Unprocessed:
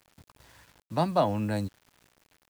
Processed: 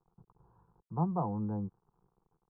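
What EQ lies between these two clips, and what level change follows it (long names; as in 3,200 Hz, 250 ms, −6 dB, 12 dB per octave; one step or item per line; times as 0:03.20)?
low-pass filter 1,100 Hz 24 dB per octave
low-shelf EQ 200 Hz +8.5 dB
phaser with its sweep stopped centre 400 Hz, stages 8
−5.5 dB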